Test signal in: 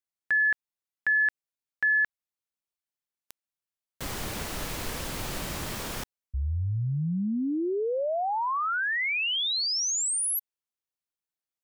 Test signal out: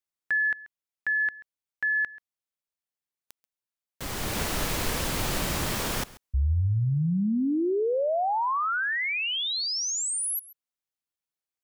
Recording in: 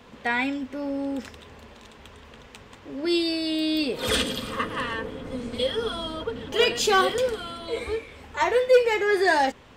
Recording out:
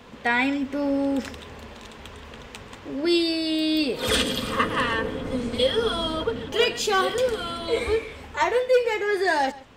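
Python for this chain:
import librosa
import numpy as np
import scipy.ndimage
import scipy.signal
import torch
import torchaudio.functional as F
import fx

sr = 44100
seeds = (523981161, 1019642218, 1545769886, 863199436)

y = fx.rider(x, sr, range_db=4, speed_s=0.5)
y = y + 10.0 ** (-19.5 / 20.0) * np.pad(y, (int(135 * sr / 1000.0), 0))[:len(y)]
y = F.gain(torch.from_numpy(y), 1.5).numpy()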